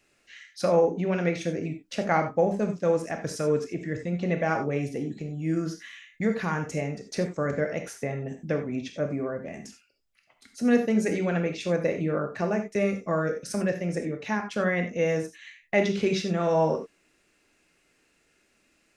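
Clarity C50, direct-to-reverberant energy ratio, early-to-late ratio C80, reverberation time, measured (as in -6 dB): 8.5 dB, 5.5 dB, 13.5 dB, not exponential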